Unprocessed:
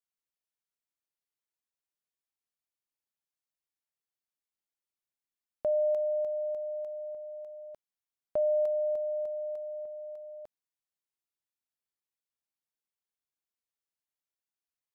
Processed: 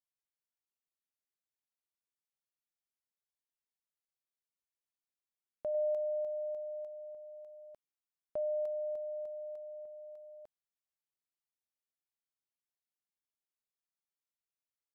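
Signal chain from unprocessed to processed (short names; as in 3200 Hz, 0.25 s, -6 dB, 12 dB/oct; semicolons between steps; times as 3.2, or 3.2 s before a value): 5.74–6.87 dynamic EQ 660 Hz, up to +3 dB, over -37 dBFS; gain -7.5 dB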